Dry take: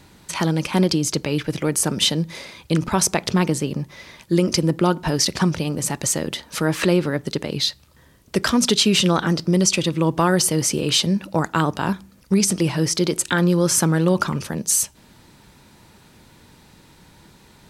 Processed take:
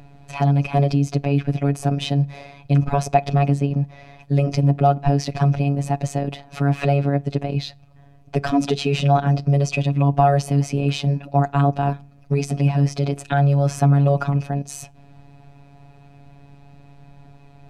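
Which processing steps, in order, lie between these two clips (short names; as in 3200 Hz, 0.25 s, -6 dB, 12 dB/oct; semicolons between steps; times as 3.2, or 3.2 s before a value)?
RIAA curve playback; robotiser 141 Hz; small resonant body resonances 700/2500 Hz, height 16 dB, ringing for 40 ms; gain -3.5 dB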